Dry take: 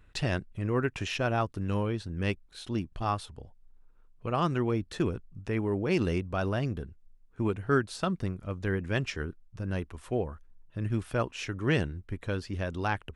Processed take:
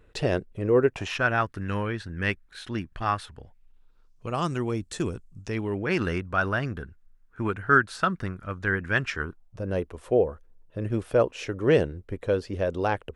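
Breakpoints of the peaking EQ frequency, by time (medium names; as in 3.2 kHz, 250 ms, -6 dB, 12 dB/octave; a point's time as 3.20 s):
peaking EQ +13 dB 0.97 oct
0.85 s 460 Hz
1.27 s 1.7 kHz
3.41 s 1.7 kHz
4.34 s 7.8 kHz
5.39 s 7.8 kHz
5.92 s 1.5 kHz
9.12 s 1.5 kHz
9.66 s 500 Hz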